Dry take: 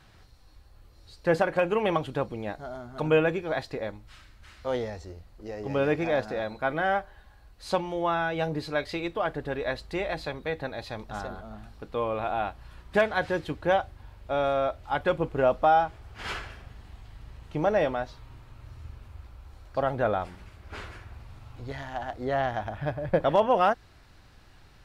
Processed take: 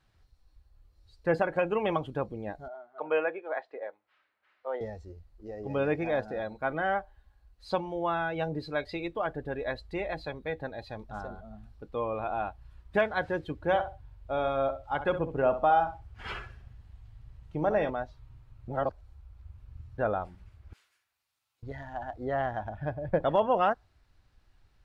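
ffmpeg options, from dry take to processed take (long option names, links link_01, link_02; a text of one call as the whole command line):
ffmpeg -i in.wav -filter_complex "[0:a]asettb=1/sr,asplit=3[link_01][link_02][link_03];[link_01]atrim=end=2.684[link_04];[link_02]atrim=start=2.68:end=4.81,asetpts=PTS-STARTPTS,afade=type=in:duration=0.004:curve=qsin,afade=type=out:start_time=2.126:duration=0.004:curve=qsin,asuperpass=centerf=1100:order=4:qfactor=0.51[link_05];[link_03]atrim=start=4.806[link_06];[link_04][link_05]acrossfade=duration=0.004:curve1=hsin:curve2=qsin[link_07];[link_07][link_06]acrossfade=duration=0.004:curve1=qsin:curve2=hsin,asettb=1/sr,asplit=3[link_08][link_09][link_10];[link_08]atrim=end=13.554[link_11];[link_09]atrim=start=13.55:end=17.9,asetpts=PTS-STARTPTS,afade=type=in:duration=0.004:curve=qsin,afade=type=out:start_time=4.346:duration=0.004:curve=qsin,aecho=1:1:66|132|198:0.316|0.0917|0.0266,atrim=end_sample=191835[link_12];[link_10]atrim=start=17.896[link_13];[link_11][link_12]acrossfade=duration=0.004:curve1=hsin:curve2=qsin[link_14];[link_14][link_13]acrossfade=duration=0.004:curve1=qsin:curve2=hsin,asettb=1/sr,asplit=3[link_15][link_16][link_17];[link_15]atrim=end=20.734[link_18];[link_16]atrim=start=20.73:end=21.63,asetpts=PTS-STARTPTS,afade=type=in:duration=0.004:curve=qsin,afade=type=out:start_time=0.896:duration=0.004:curve=qsin,aderivative[link_19];[link_17]atrim=start=21.626[link_20];[link_18][link_19]acrossfade=duration=0.004:curve1=hsin:curve2=qsin[link_21];[link_21][link_20]acrossfade=duration=0.004:curve1=qsin:curve2=hsin,asplit=3[link_22][link_23][link_24];[link_22]atrim=end=18.682[link_25];[link_23]atrim=start=18.678:end=19.982,asetpts=PTS-STARTPTS,areverse[link_26];[link_24]atrim=start=19.978[link_27];[link_25][link_26]acrossfade=duration=0.004:curve1=hsin:curve2=hsin[link_28];[link_28][link_27]acrossfade=duration=0.004:curve1=hsin:curve2=hsin,afftdn=noise_reduction=12:noise_floor=-38,volume=-3dB" out.wav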